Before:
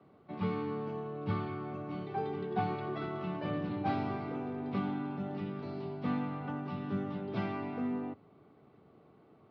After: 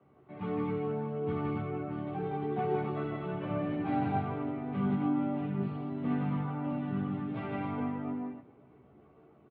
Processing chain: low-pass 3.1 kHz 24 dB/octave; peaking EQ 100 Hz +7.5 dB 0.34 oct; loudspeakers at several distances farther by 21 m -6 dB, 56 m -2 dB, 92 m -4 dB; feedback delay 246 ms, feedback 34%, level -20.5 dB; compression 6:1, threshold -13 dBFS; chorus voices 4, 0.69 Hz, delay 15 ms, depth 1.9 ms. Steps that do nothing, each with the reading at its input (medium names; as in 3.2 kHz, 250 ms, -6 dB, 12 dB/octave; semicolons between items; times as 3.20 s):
compression, threshold -13 dBFS: peak at its input -16.0 dBFS